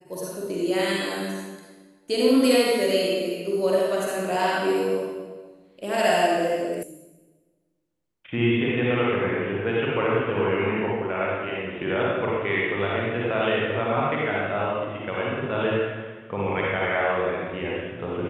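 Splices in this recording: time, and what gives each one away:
0:06.83: cut off before it has died away

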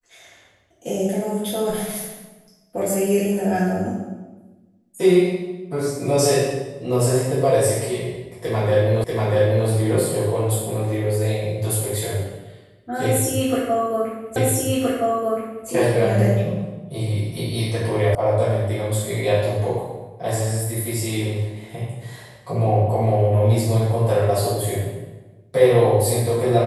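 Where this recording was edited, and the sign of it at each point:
0:09.04: the same again, the last 0.64 s
0:14.36: the same again, the last 1.32 s
0:18.15: cut off before it has died away

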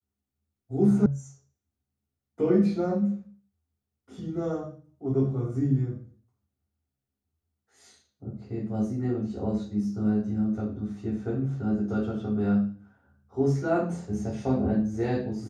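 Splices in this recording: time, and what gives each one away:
0:01.06: cut off before it has died away

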